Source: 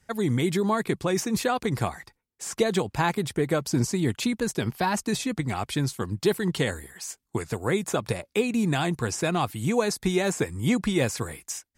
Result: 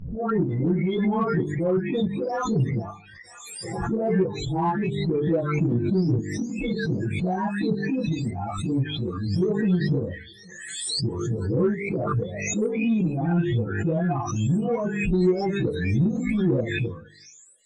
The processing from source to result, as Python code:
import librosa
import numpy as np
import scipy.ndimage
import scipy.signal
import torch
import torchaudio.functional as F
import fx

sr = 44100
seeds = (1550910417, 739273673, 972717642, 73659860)

p1 = fx.spec_delay(x, sr, highs='late', ms=537)
p2 = fx.low_shelf(p1, sr, hz=330.0, db=8.0)
p3 = fx.spec_topn(p2, sr, count=16)
p4 = fx.air_absorb(p3, sr, metres=72.0)
p5 = fx.transient(p4, sr, attack_db=-2, sustain_db=-8)
p6 = fx.hum_notches(p5, sr, base_hz=50, count=9)
p7 = p6 + fx.echo_wet_highpass(p6, sr, ms=323, feedback_pct=44, hz=2900.0, wet_db=-14.5, dry=0)
p8 = fx.stretch_vocoder_free(p7, sr, factor=1.5)
p9 = 10.0 ** (-25.5 / 20.0) * np.tanh(p8 / 10.0 ** (-25.5 / 20.0))
p10 = p8 + (p9 * librosa.db_to_amplitude(-6.0))
y = fx.pre_swell(p10, sr, db_per_s=39.0)